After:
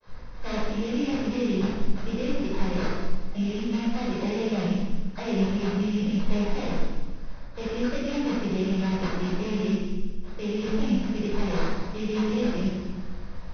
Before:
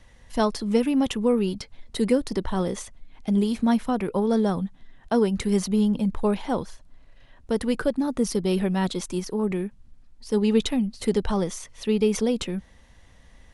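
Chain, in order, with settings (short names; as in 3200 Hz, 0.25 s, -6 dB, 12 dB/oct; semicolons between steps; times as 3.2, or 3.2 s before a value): nonlinear frequency compression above 1900 Hz 1.5:1; reverse; compressor 5:1, threshold -33 dBFS, peak gain reduction 16 dB; reverse; limiter -31.5 dBFS, peak gain reduction 8.5 dB; dispersion lows, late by 71 ms, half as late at 1800 Hz; sample-rate reducer 3000 Hz, jitter 20%; brick-wall FIR low-pass 6300 Hz; thin delay 0.191 s, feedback 42%, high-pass 4000 Hz, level -7 dB; reverb RT60 1.2 s, pre-delay 10 ms, DRR -8 dB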